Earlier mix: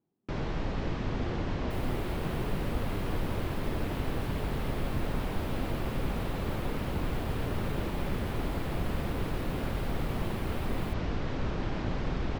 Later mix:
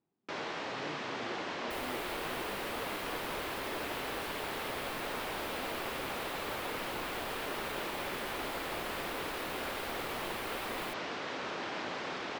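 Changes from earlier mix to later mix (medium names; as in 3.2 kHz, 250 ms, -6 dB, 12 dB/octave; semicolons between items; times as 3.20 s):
first sound: add high-pass 330 Hz 12 dB/octave; master: add tilt shelf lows -5 dB, about 670 Hz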